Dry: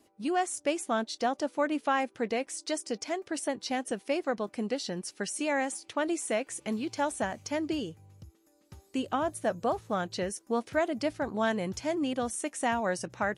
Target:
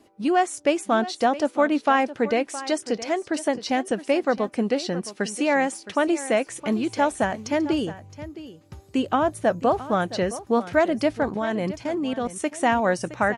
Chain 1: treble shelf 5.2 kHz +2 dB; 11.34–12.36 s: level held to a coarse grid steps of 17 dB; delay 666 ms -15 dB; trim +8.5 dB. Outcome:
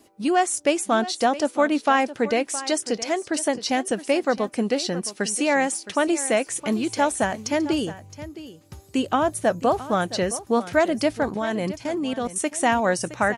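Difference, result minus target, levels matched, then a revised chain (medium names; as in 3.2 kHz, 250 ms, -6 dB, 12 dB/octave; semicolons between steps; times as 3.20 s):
8 kHz band +7.0 dB
treble shelf 5.2 kHz -9 dB; 11.34–12.36 s: level held to a coarse grid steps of 17 dB; delay 666 ms -15 dB; trim +8.5 dB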